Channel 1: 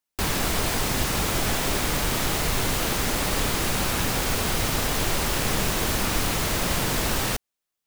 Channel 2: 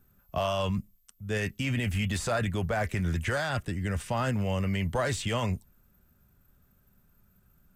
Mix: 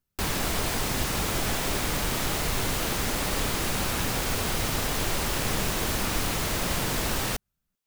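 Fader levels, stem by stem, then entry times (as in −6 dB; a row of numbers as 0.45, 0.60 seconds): −3.0, −20.0 decibels; 0.00, 0.00 seconds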